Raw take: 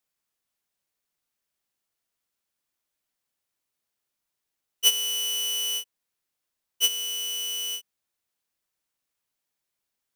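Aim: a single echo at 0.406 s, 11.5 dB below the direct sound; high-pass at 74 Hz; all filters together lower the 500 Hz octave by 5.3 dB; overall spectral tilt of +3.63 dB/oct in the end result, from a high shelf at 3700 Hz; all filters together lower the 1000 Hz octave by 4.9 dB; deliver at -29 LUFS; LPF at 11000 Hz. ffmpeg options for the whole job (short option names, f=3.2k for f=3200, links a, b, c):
-af "highpass=74,lowpass=11k,equalizer=f=500:t=o:g=-5,equalizer=f=1k:t=o:g=-5.5,highshelf=f=3.7k:g=7,aecho=1:1:406:0.266,volume=-6.5dB"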